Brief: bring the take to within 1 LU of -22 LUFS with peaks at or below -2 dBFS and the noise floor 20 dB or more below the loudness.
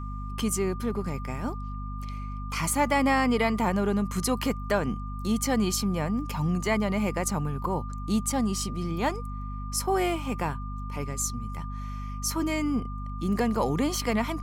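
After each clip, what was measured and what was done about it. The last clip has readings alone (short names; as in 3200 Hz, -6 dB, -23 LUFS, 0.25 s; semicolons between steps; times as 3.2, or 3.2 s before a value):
hum 50 Hz; harmonics up to 250 Hz; hum level -32 dBFS; steady tone 1200 Hz; tone level -41 dBFS; loudness -28.5 LUFS; peak -12.5 dBFS; loudness target -22.0 LUFS
-> notches 50/100/150/200/250 Hz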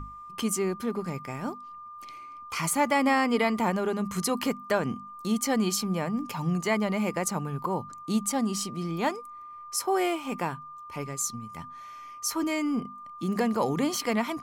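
hum none; steady tone 1200 Hz; tone level -41 dBFS
-> notch 1200 Hz, Q 30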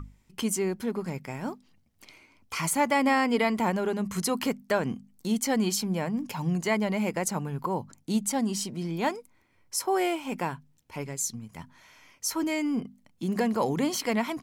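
steady tone none; loudness -28.5 LUFS; peak -13.5 dBFS; loudness target -22.0 LUFS
-> gain +6.5 dB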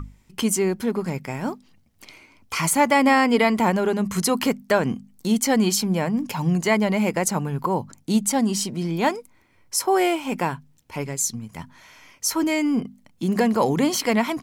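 loudness -22.0 LUFS; peak -7.0 dBFS; noise floor -58 dBFS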